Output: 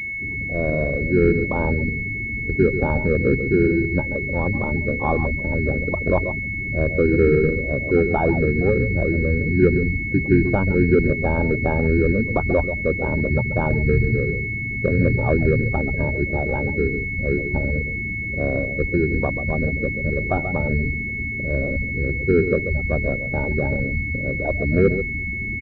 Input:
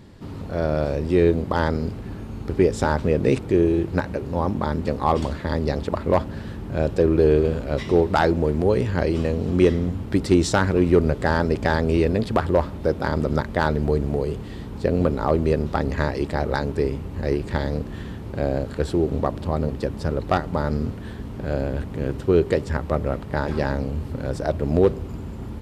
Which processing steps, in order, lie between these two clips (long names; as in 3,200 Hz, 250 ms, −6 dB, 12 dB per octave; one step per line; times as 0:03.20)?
sub-octave generator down 1 octave, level −3 dB
0:13.33–0:15.76: parametric band 120 Hz +11 dB 0.26 octaves
single-tap delay 136 ms −9 dB
gate on every frequency bin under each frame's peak −15 dB strong
switching amplifier with a slow clock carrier 2,200 Hz